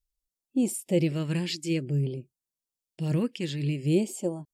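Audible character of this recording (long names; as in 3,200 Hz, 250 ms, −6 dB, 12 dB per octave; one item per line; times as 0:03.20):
phaser sweep stages 2, 0.51 Hz, lowest notch 640–2,000 Hz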